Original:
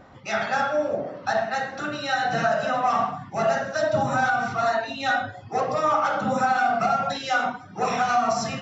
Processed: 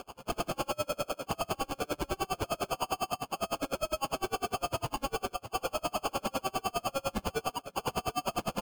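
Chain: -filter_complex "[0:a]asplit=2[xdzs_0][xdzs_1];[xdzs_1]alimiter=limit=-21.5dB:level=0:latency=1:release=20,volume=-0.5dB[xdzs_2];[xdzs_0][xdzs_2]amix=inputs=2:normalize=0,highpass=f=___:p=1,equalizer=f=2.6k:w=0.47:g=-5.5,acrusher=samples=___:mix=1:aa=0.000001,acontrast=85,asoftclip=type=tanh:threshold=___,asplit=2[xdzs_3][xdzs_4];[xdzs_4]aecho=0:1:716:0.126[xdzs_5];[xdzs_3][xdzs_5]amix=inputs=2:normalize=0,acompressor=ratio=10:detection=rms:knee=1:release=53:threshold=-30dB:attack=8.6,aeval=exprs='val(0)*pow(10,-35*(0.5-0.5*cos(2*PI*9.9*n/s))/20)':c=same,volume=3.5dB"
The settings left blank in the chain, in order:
1k, 23, -27dB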